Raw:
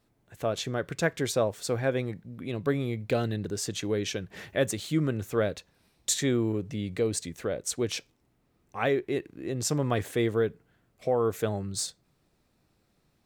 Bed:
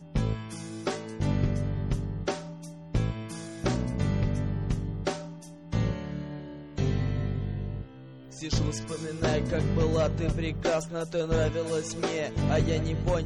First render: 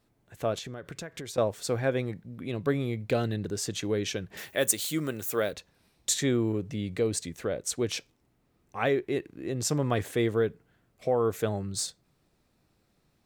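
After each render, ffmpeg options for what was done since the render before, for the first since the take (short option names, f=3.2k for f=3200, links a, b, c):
-filter_complex "[0:a]asettb=1/sr,asplit=3[a][b][c];[a]atrim=end=0.584[d];[b]atrim=start=0.58:end=1.38,asetpts=PTS-STARTPTS,afade=t=in:d=0.004:c=qsin,afade=t=out:st=0.796:d=0.004:c=qsin,acompressor=threshold=-35dB:ratio=12:attack=3.2:release=140:knee=1:detection=peak[e];[c]atrim=start=1.376[f];[d][e]acrossfade=d=0.004:c1=hsin:c2=qsin[g];[g][f]acrossfade=d=0.004:c1=qsin:c2=hsin,asettb=1/sr,asplit=3[h][i][j];[h]atrim=end=4.374[k];[i]atrim=start=4.37:end=5.53,asetpts=PTS-STARTPTS,afade=t=in:d=0.004:c=qsin,afade=t=out:st=1.156:d=0.004:c=qsin,aemphasis=mode=production:type=bsi[l];[j]atrim=start=5.526[m];[k][l]acrossfade=d=0.004:c1=hsin:c2=qsin[n];[n][m]acrossfade=d=0.004:c1=qsin:c2=hsin"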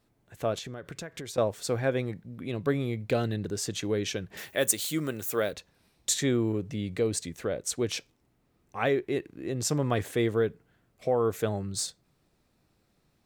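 -af anull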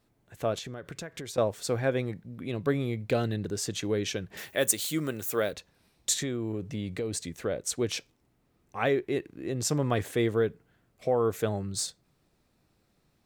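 -filter_complex "[0:a]asettb=1/sr,asplit=3[a][b][c];[a]atrim=end=6.174[d];[b]atrim=start=6.17:end=7.34,asetpts=PTS-STARTPTS,afade=t=in:d=0.004:c=qsin,afade=t=out:st=1.166:d=0.004:c=qsin,acompressor=threshold=-28dB:ratio=6:attack=3.2:release=140:knee=1:detection=peak[e];[c]atrim=start=7.336[f];[d][e]acrossfade=d=0.004:c1=hsin:c2=qsin[g];[g][f]acrossfade=d=0.004:c1=qsin:c2=hsin"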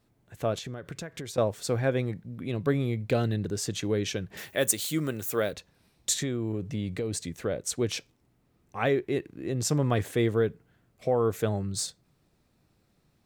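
-af "equalizer=f=120:w=0.68:g=3.5"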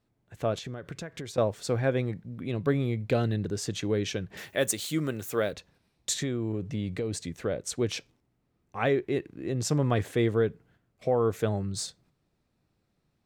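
-af "agate=range=-6dB:threshold=-60dB:ratio=16:detection=peak,highshelf=f=9.1k:g=-9"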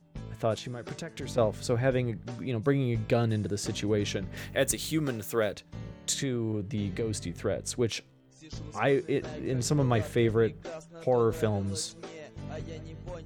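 -filter_complex "[1:a]volume=-14dB[a];[0:a][a]amix=inputs=2:normalize=0"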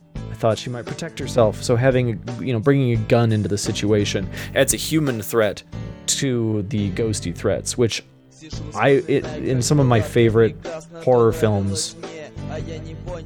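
-af "volume=10dB"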